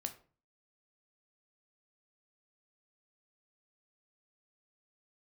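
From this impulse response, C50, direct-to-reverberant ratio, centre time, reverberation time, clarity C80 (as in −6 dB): 13.5 dB, 6.5 dB, 9 ms, 0.40 s, 18.0 dB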